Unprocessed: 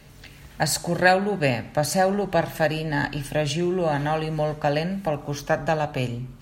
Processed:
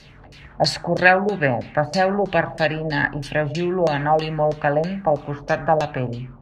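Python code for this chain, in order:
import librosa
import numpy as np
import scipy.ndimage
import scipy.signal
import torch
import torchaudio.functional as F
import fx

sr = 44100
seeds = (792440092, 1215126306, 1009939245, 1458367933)

y = fx.high_shelf(x, sr, hz=9600.0, db=11.0)
y = fx.filter_lfo_lowpass(y, sr, shape='saw_down', hz=3.1, low_hz=530.0, high_hz=5500.0, q=2.7)
y = y * 10.0 ** (1.0 / 20.0)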